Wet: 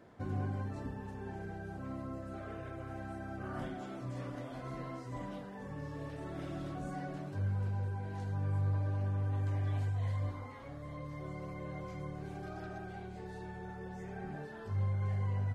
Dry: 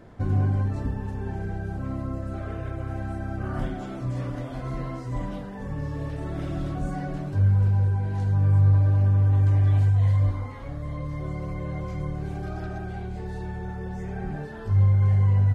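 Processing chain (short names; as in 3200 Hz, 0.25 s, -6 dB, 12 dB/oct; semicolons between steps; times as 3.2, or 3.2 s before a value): HPF 220 Hz 6 dB/oct; gain -7 dB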